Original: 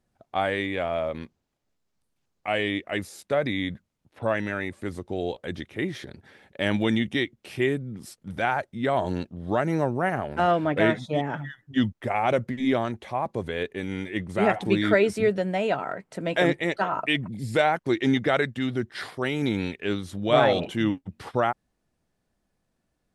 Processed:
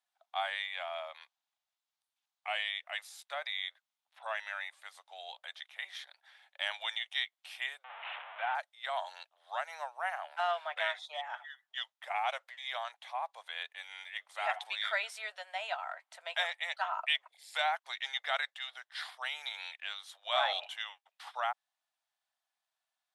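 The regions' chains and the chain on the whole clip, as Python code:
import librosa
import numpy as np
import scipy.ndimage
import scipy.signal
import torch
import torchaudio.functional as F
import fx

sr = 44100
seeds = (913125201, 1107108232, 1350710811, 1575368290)

y = fx.chain(x, sr, fx.delta_mod(bps=16000, step_db=-24.0),
    fx.lowpass(hz=2200.0, slope=6),
    fx.low_shelf(hz=170.0, db=12.0), at=(7.84, 8.55))
y = scipy.signal.sosfilt(scipy.signal.butter(8, 700.0, 'highpass', fs=sr, output='sos'), y)
y = fx.peak_eq(y, sr, hz=3500.0, db=7.0, octaves=0.56)
y = y * 10.0 ** (-7.5 / 20.0)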